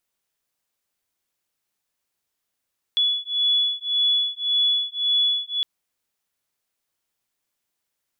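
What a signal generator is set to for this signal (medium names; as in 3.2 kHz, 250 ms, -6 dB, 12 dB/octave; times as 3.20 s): beating tones 3.41 kHz, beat 1.8 Hz, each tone -22 dBFS 2.66 s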